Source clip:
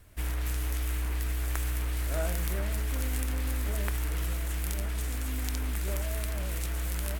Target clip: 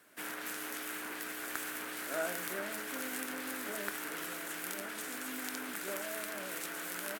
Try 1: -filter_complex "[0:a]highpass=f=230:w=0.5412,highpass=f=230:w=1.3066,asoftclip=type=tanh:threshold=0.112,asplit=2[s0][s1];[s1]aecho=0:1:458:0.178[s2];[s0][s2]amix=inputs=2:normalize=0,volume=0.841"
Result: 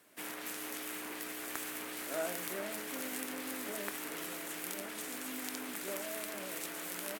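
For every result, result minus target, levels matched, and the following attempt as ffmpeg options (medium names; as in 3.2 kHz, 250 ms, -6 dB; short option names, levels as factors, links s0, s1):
echo-to-direct +11.5 dB; 2 kHz band -3.0 dB
-filter_complex "[0:a]highpass=f=230:w=0.5412,highpass=f=230:w=1.3066,asoftclip=type=tanh:threshold=0.112,asplit=2[s0][s1];[s1]aecho=0:1:458:0.0473[s2];[s0][s2]amix=inputs=2:normalize=0,volume=0.841"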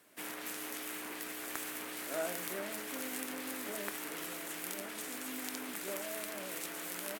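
2 kHz band -3.0 dB
-filter_complex "[0:a]highpass=f=230:w=0.5412,highpass=f=230:w=1.3066,equalizer=f=1500:t=o:w=0.5:g=7,asoftclip=type=tanh:threshold=0.112,asplit=2[s0][s1];[s1]aecho=0:1:458:0.0473[s2];[s0][s2]amix=inputs=2:normalize=0,volume=0.841"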